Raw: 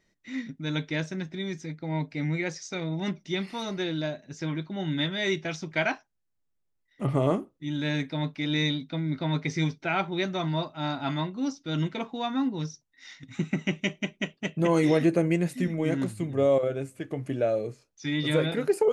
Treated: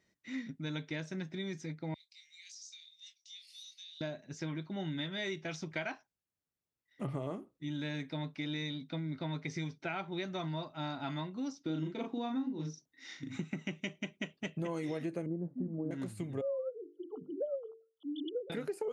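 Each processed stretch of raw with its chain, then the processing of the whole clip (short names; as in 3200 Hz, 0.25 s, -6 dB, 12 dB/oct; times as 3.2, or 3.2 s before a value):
1.94–4.01 inverse Chebyshev high-pass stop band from 840 Hz, stop band 70 dB + compressor 3:1, threshold -45 dBFS + doubler 25 ms -7.5 dB
11.65–13.38 bell 310 Hz +10.5 dB 1.2 oct + doubler 38 ms -3 dB
15.26–15.91 Bessel low-pass 640 Hz, order 8 + bell 260 Hz +6 dB 0.98 oct
16.41–18.5 sine-wave speech + brick-wall FIR band-stop 1400–2900 Hz + notches 50/100/150/200/250/300/350/400/450 Hz
whole clip: HPF 60 Hz; compressor 5:1, threshold -31 dBFS; gain -4 dB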